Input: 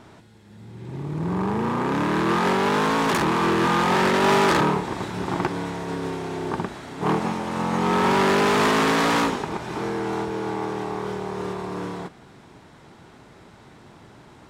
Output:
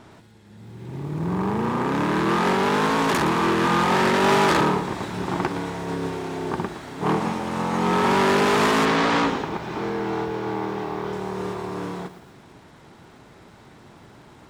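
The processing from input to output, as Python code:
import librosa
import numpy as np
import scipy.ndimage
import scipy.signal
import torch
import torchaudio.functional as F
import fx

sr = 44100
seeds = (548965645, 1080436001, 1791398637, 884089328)

y = fx.lowpass(x, sr, hz=5300.0, slope=12, at=(8.85, 11.13))
y = fx.echo_crushed(y, sr, ms=116, feedback_pct=35, bits=8, wet_db=-12.5)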